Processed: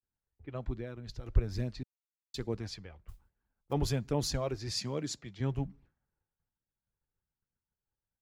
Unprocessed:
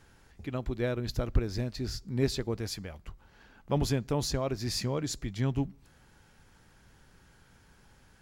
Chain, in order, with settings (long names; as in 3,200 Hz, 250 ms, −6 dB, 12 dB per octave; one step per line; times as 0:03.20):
low-pass that shuts in the quiet parts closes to 1,300 Hz, open at −26.5 dBFS
downward expander −49 dBFS
flanger 1.2 Hz, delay 0.3 ms, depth 2.3 ms, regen −45%
0:00.75–0:01.26: downward compressor 6 to 1, threshold −37 dBFS, peak gain reduction 10 dB
0:01.83–0:02.34: silence
0:03.08–0:03.73: noise that follows the level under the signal 20 dB
0:04.71–0:05.40: high-pass filter 120 Hz
multiband upward and downward expander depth 40%